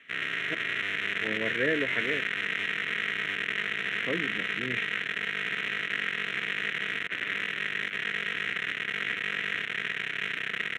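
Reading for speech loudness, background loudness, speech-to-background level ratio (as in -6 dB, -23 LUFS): -33.5 LUFS, -29.5 LUFS, -4.0 dB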